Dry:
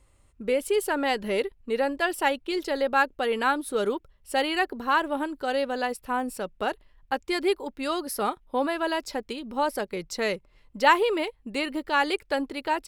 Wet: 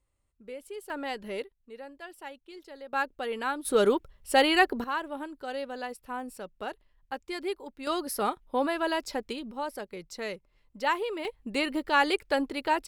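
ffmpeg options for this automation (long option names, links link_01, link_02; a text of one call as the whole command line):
ffmpeg -i in.wav -af "asetnsamples=nb_out_samples=441:pad=0,asendcmd='0.9 volume volume -9dB;1.44 volume volume -18.5dB;2.93 volume volume -7dB;3.65 volume volume 3.5dB;4.84 volume volume -8.5dB;7.87 volume volume -1.5dB;9.51 volume volume -8.5dB;11.25 volume volume 0dB',volume=-16.5dB" out.wav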